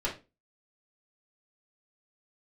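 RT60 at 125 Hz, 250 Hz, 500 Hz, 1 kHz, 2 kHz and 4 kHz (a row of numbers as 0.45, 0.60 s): 0.35, 0.35, 0.30, 0.25, 0.25, 0.25 s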